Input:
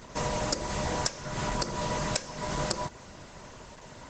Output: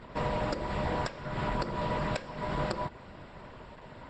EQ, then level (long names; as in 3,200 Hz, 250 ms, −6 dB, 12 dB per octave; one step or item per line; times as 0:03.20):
moving average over 7 samples
0.0 dB